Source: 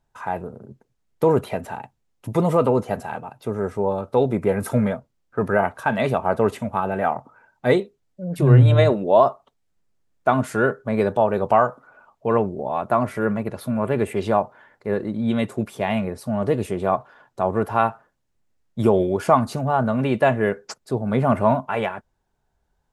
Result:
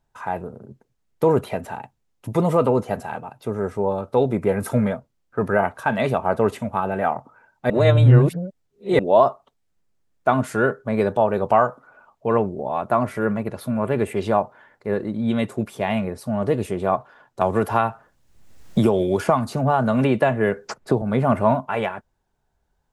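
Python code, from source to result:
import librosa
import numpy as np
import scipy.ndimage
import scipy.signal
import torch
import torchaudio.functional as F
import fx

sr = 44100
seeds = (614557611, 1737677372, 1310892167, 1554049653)

y = fx.band_squash(x, sr, depth_pct=100, at=(17.41, 21.02))
y = fx.edit(y, sr, fx.reverse_span(start_s=7.7, length_s=1.29), tone=tone)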